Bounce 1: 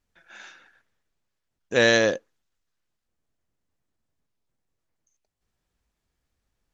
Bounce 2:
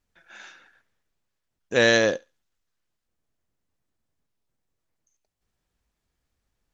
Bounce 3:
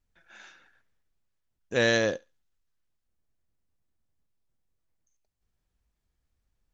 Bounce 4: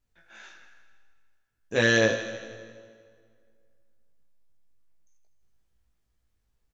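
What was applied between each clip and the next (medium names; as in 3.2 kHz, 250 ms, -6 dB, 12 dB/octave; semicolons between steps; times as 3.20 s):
thinning echo 70 ms, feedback 20%, high-pass 1.1 kHz, level -21 dB
bass shelf 120 Hz +9 dB; trim -5.5 dB
doubling 18 ms -3 dB; thinning echo 81 ms, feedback 71%, high-pass 820 Hz, level -11 dB; reverberation RT60 2.1 s, pre-delay 65 ms, DRR 12.5 dB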